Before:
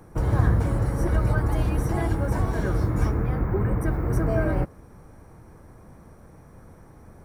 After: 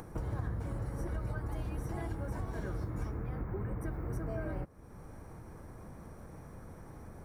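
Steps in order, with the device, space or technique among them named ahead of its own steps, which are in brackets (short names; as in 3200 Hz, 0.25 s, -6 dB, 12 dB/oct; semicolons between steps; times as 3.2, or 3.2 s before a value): upward and downward compression (upward compressor, threshold -39 dBFS; compressor 3:1, threshold -34 dBFS, peak gain reduction 14.5 dB); gain -3.5 dB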